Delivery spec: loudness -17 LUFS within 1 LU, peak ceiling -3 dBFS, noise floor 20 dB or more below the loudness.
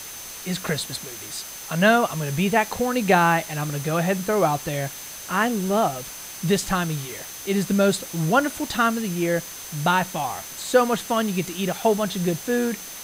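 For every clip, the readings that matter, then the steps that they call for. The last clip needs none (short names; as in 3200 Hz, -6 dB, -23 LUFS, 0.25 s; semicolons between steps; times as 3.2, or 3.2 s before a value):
steady tone 6200 Hz; tone level -40 dBFS; noise floor -37 dBFS; noise floor target -43 dBFS; loudness -23.0 LUFS; peak -4.5 dBFS; loudness target -17.0 LUFS
-> notch 6200 Hz, Q 30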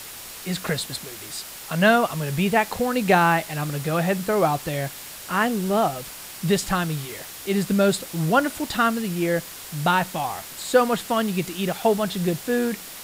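steady tone none; noise floor -39 dBFS; noise floor target -43 dBFS
-> denoiser 6 dB, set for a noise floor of -39 dBFS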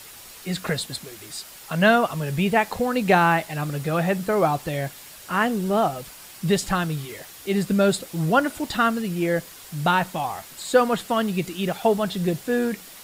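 noise floor -44 dBFS; loudness -23.0 LUFS; peak -4.5 dBFS; loudness target -17.0 LUFS
-> gain +6 dB; limiter -3 dBFS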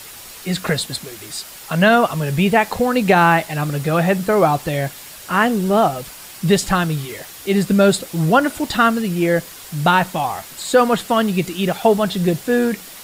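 loudness -17.5 LUFS; peak -3.0 dBFS; noise floor -38 dBFS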